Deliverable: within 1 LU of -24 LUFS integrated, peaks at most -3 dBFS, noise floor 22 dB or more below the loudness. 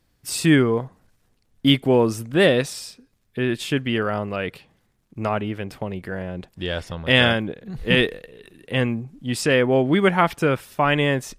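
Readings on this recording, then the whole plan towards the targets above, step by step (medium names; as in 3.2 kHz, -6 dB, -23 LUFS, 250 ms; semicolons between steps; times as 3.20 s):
loudness -21.5 LUFS; peak level -2.0 dBFS; loudness target -24.0 LUFS
-> trim -2.5 dB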